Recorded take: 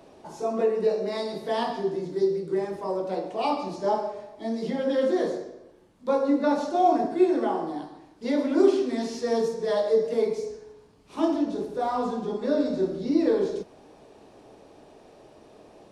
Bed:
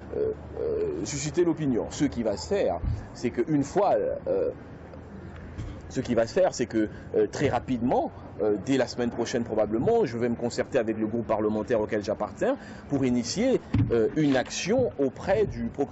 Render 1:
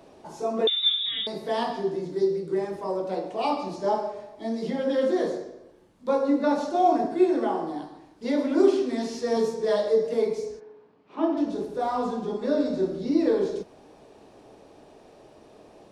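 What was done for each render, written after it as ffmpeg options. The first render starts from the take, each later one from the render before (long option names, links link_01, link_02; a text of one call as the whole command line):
ffmpeg -i in.wav -filter_complex "[0:a]asettb=1/sr,asplit=3[link_01][link_02][link_03];[link_01]atrim=end=0.674[link_04];[link_02]atrim=start=0.67:end=1.27,asetpts=PTS-STARTPTS,afade=type=in:duration=0.004:curve=qsin,afade=type=out:start_time=0.596:duration=0.004:curve=qsin,lowpass=frequency=3400:width_type=q:width=0.5098,lowpass=frequency=3400:width_type=q:width=0.6013,lowpass=frequency=3400:width_type=q:width=0.9,lowpass=frequency=3400:width_type=q:width=2.563,afreqshift=-4000[link_05];[link_03]atrim=start=1.266[link_06];[link_04][link_05]acrossfade=duration=0.004:curve1=hsin:curve2=qsin[link_07];[link_07][link_06]acrossfade=duration=0.004:curve1=qsin:curve2=hsin,asettb=1/sr,asplit=3[link_08][link_09][link_10];[link_08]atrim=end=9.354[link_11];[link_09]atrim=start=9.35:end=9.88,asetpts=PTS-STARTPTS,afade=type=in:duration=0.004:curve=qsin,afade=type=out:start_time=0.526:duration=0.004:curve=qsin,asplit=2[link_12][link_13];[link_13]adelay=14,volume=-4dB[link_14];[link_12][link_14]amix=inputs=2:normalize=0,atrim=end_sample=23373[link_15];[link_10]atrim=start=9.876[link_16];[link_11][link_15]acrossfade=duration=0.004:curve1=hsin:curve2=qsin[link_17];[link_17][link_16]acrossfade=duration=0.004:curve1=qsin:curve2=hsin,asplit=3[link_18][link_19][link_20];[link_18]afade=type=out:start_time=10.59:duration=0.02[link_21];[link_19]highpass=210,lowpass=2300,afade=type=in:start_time=10.59:duration=0.02,afade=type=out:start_time=11.36:duration=0.02[link_22];[link_20]afade=type=in:start_time=11.36:duration=0.02[link_23];[link_21][link_22][link_23]amix=inputs=3:normalize=0" out.wav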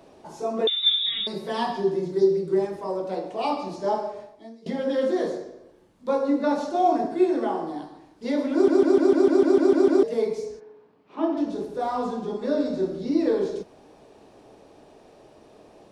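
ffmpeg -i in.wav -filter_complex "[0:a]asettb=1/sr,asplit=3[link_01][link_02][link_03];[link_01]atrim=end=0.864[link_04];[link_02]atrim=start=0.86:end=2.67,asetpts=PTS-STARTPTS,afade=type=in:duration=0.004:curve=qsin,afade=type=out:start_time=1.806:duration=0.004:curve=qsin,aecho=1:1:5.3:0.65,atrim=end_sample=79821[link_05];[link_03]atrim=start=2.666[link_06];[link_04][link_05]acrossfade=duration=0.004:curve1=hsin:curve2=qsin[link_07];[link_07][link_06]acrossfade=duration=0.004:curve1=qsin:curve2=hsin,asplit=12[link_08][link_09][link_10][link_11][link_12][link_13][link_14][link_15][link_16][link_17][link_18][link_19];[link_08]atrim=end=4.66,asetpts=PTS-STARTPTS,afade=type=out:start_time=4.22:duration=0.44:curve=qua:silence=0.0944061[link_20];[link_09]atrim=start=4.66:end=8.682,asetpts=PTS-STARTPTS,afade=type=in:duration=0.004:curve=hsin:silence=0.0944061[link_21];[link_10]atrim=start=8.528:end=8.682[link_22];[link_11]atrim=start=8.528:end=8.682[link_23];[link_12]atrim=start=8.528:end=8.682[link_24];[link_13]atrim=start=8.528:end=8.682[link_25];[link_14]atrim=start=8.528:end=8.682[link_26];[link_15]atrim=start=8.528:end=8.682[link_27];[link_16]atrim=start=8.528:end=8.682[link_28];[link_17]atrim=start=8.528:end=8.682[link_29];[link_18]atrim=start=8.528:end=8.682[link_30];[link_19]atrim=start=10.028[link_31];[link_20][link_21]concat=n=2:v=0:a=1[link_32];[link_32][link_22]acrossfade=duration=0.004:curve1=hsin:curve2=hsin[link_33];[link_33][link_23]acrossfade=duration=0.004:curve1=hsin:curve2=hsin[link_34];[link_34][link_24]acrossfade=duration=0.004:curve1=hsin:curve2=hsin[link_35];[link_35][link_25]acrossfade=duration=0.004:curve1=hsin:curve2=hsin[link_36];[link_36][link_26]acrossfade=duration=0.004:curve1=hsin:curve2=hsin[link_37];[link_37][link_27]acrossfade=duration=0.004:curve1=hsin:curve2=hsin[link_38];[link_38][link_28]acrossfade=duration=0.004:curve1=hsin:curve2=hsin[link_39];[link_39][link_29]acrossfade=duration=0.004:curve1=hsin:curve2=hsin[link_40];[link_40][link_30]acrossfade=duration=0.004:curve1=hsin:curve2=hsin[link_41];[link_41][link_31]acrossfade=duration=0.004:curve1=hsin:curve2=hsin" out.wav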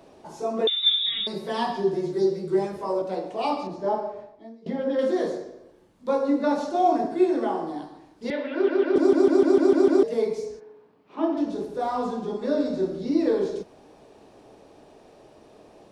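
ffmpeg -i in.wav -filter_complex "[0:a]asettb=1/sr,asplit=3[link_01][link_02][link_03];[link_01]atrim=end=1.924[link_04];[link_02]atrim=start=1.92:end=3.02,asetpts=PTS-STARTPTS,afade=type=in:duration=0.004:curve=qsin,afade=type=out:start_time=1.096:duration=0.004:curve=qsin,asplit=2[link_05][link_06];[link_06]adelay=14,volume=-2dB[link_07];[link_05][link_07]amix=inputs=2:normalize=0,atrim=end_sample=48510[link_08];[link_03]atrim=start=3.016[link_09];[link_04][link_08]acrossfade=duration=0.004:curve1=hsin:curve2=qsin[link_10];[link_10][link_09]acrossfade=duration=0.004:curve1=qsin:curve2=hsin,asettb=1/sr,asplit=3[link_11][link_12][link_13];[link_11]atrim=end=3.674[link_14];[link_12]atrim=start=3.67:end=4.99,asetpts=PTS-STARTPTS,afade=type=in:duration=0.004:curve=qsin,afade=type=out:start_time=1.316:duration=0.004:curve=qsin,lowpass=frequency=1800:poles=1[link_15];[link_13]atrim=start=4.986[link_16];[link_14][link_15]acrossfade=duration=0.004:curve1=hsin:curve2=qsin[link_17];[link_17][link_16]acrossfade=duration=0.004:curve1=qsin:curve2=hsin,asettb=1/sr,asplit=3[link_18][link_19][link_20];[link_18]atrim=end=8.304[link_21];[link_19]atrim=start=8.3:end=8.96,asetpts=PTS-STARTPTS,afade=type=in:duration=0.004:curve=qsin,afade=type=out:start_time=0.656:duration=0.004:curve=qsin,highpass=frequency=290:width=0.5412,highpass=frequency=290:width=1.3066,equalizer=frequency=310:width_type=q:width=4:gain=-8,equalizer=frequency=740:width_type=q:width=4:gain=-5,equalizer=frequency=1100:width_type=q:width=4:gain=-4,equalizer=frequency=1700:width_type=q:width=4:gain=8,equalizer=frequency=2800:width_type=q:width=4:gain=9,lowpass=frequency=3700:width=0.5412,lowpass=frequency=3700:width=1.3066[link_22];[link_20]atrim=start=8.956[link_23];[link_21][link_22]acrossfade=duration=0.004:curve1=hsin:curve2=qsin[link_24];[link_24][link_23]acrossfade=duration=0.004:curve1=qsin:curve2=hsin" out.wav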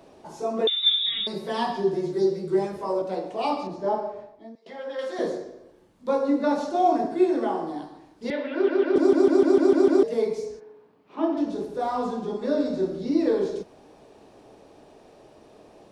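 ffmpeg -i in.wav -filter_complex "[0:a]asettb=1/sr,asplit=3[link_01][link_02][link_03];[link_01]atrim=end=4.554[link_04];[link_02]atrim=start=4.55:end=5.19,asetpts=PTS-STARTPTS,afade=type=in:duration=0.004:curve=qsin,afade=type=out:start_time=0.636:duration=0.004:curve=qsin,highpass=740[link_05];[link_03]atrim=start=5.186[link_06];[link_04][link_05]acrossfade=duration=0.004:curve1=hsin:curve2=qsin[link_07];[link_07][link_06]acrossfade=duration=0.004:curve1=qsin:curve2=hsin" out.wav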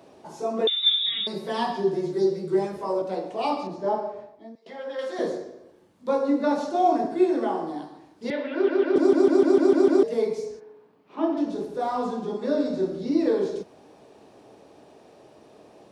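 ffmpeg -i in.wav -af "highpass=85" out.wav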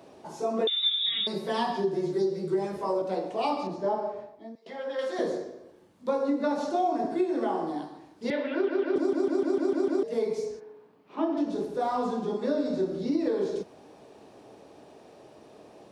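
ffmpeg -i in.wav -af "acompressor=threshold=-23dB:ratio=6" out.wav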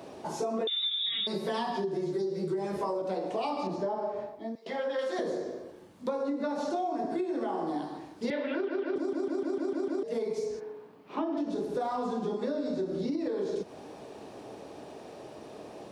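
ffmpeg -i in.wav -filter_complex "[0:a]asplit=2[link_01][link_02];[link_02]alimiter=limit=-24dB:level=0:latency=1,volume=-0.5dB[link_03];[link_01][link_03]amix=inputs=2:normalize=0,acompressor=threshold=-29dB:ratio=6" out.wav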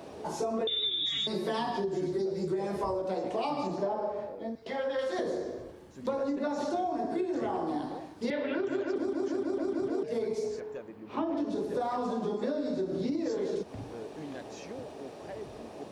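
ffmpeg -i in.wav -i bed.wav -filter_complex "[1:a]volume=-19.5dB[link_01];[0:a][link_01]amix=inputs=2:normalize=0" out.wav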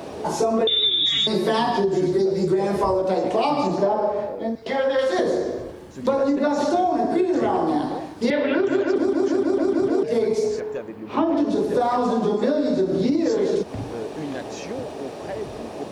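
ffmpeg -i in.wav -af "volume=11dB" out.wav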